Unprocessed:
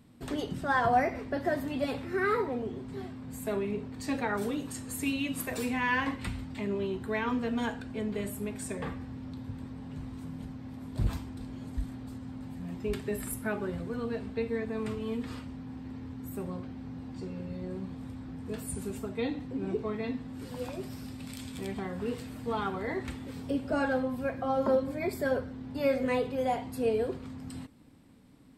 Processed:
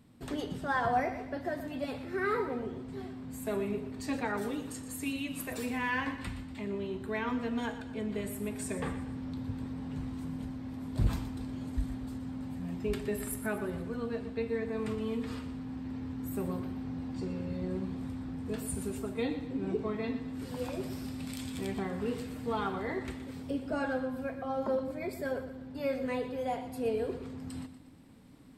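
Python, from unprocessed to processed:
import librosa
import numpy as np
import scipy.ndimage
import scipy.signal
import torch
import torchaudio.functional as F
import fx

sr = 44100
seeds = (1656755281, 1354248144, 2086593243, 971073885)

p1 = fx.rider(x, sr, range_db=5, speed_s=2.0)
p2 = p1 + fx.echo_feedback(p1, sr, ms=120, feedback_pct=44, wet_db=-12, dry=0)
y = F.gain(torch.from_numpy(p2), -3.0).numpy()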